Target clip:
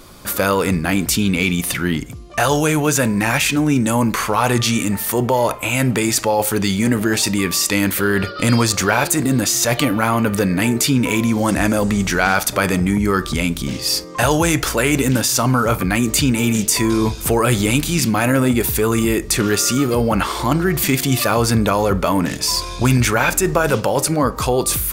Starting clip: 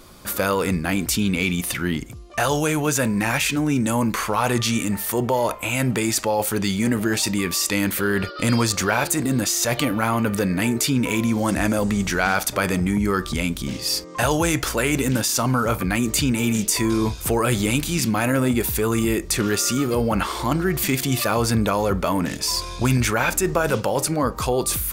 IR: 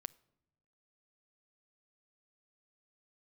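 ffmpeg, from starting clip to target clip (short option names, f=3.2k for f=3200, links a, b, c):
-filter_complex "[0:a]asplit=2[a][b];[1:a]atrim=start_sample=2205[c];[b][c]afir=irnorm=-1:irlink=0,volume=20.5dB[d];[a][d]amix=inputs=2:normalize=0,volume=-13.5dB"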